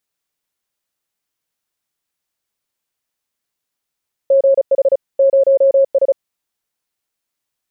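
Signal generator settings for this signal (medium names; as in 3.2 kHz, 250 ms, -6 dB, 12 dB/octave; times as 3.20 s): Morse "GH 0S" 35 wpm 545 Hz -7.5 dBFS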